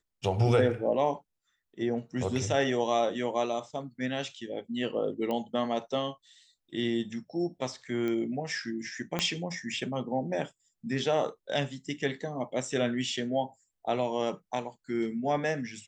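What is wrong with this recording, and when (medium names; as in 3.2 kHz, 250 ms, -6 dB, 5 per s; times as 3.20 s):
5.31 s: pop -21 dBFS
8.08 s: pop -22 dBFS
9.19 s: pop -13 dBFS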